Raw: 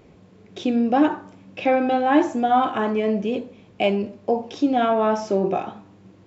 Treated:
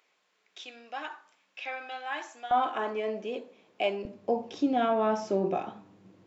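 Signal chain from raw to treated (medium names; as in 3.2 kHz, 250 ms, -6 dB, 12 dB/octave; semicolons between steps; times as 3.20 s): high-pass 1.4 kHz 12 dB/octave, from 2.51 s 410 Hz, from 4.05 s 120 Hz; trim -6.5 dB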